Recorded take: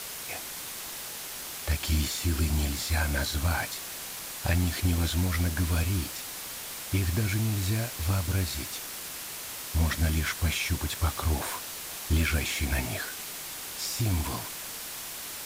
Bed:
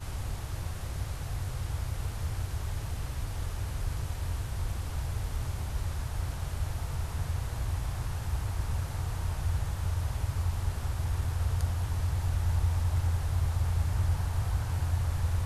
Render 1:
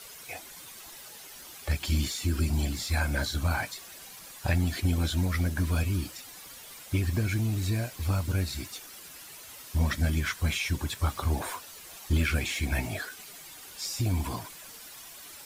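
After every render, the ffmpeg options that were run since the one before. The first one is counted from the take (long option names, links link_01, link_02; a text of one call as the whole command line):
ffmpeg -i in.wav -af "afftdn=noise_reduction=11:noise_floor=-39" out.wav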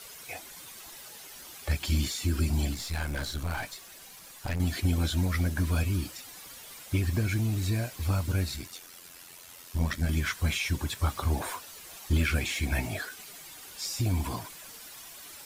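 ffmpeg -i in.wav -filter_complex "[0:a]asettb=1/sr,asplit=3[link_01][link_02][link_03];[link_01]atrim=end=2.744[link_04];[link_02]atrim=start=2.74:end=4.6,asetpts=PTS-STARTPTS,afade=type=in:duration=0.004:curve=qsin,afade=type=out:start_time=1.856:duration=0.004:curve=qsin,aeval=exprs='(tanh(25.1*val(0)+0.55)-tanh(0.55))/25.1':channel_layout=same[link_05];[link_03]atrim=start=4.596[link_06];[link_04][link_05]acrossfade=duration=0.004:curve1=hsin:curve2=qsin[link_07];[link_07][link_06]acrossfade=duration=0.004:curve1=qsin:curve2=hsin,asettb=1/sr,asplit=3[link_08][link_09][link_10];[link_08]atrim=end=8.564[link_11];[link_09]atrim=start=8.56:end=10.09,asetpts=PTS-STARTPTS,afade=type=in:duration=0.004:curve=qsin,afade=type=out:start_time=1.526:duration=0.004:curve=qsin,tremolo=f=87:d=0.621[link_12];[link_10]atrim=start=10.086[link_13];[link_11][link_12]acrossfade=duration=0.004:curve1=hsin:curve2=qsin[link_14];[link_14][link_13]acrossfade=duration=0.004:curve1=qsin:curve2=hsin" out.wav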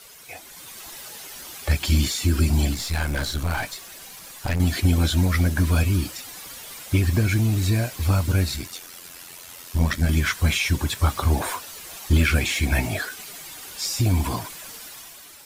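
ffmpeg -i in.wav -af "dynaudnorm=framelen=140:gausssize=9:maxgain=7.5dB" out.wav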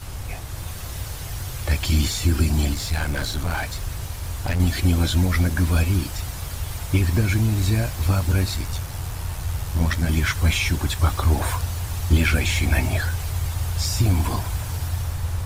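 ffmpeg -i in.wav -i bed.wav -filter_complex "[1:a]volume=3dB[link_01];[0:a][link_01]amix=inputs=2:normalize=0" out.wav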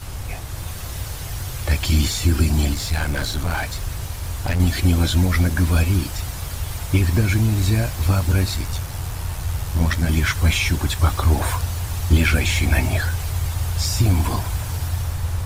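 ffmpeg -i in.wav -af "volume=2dB" out.wav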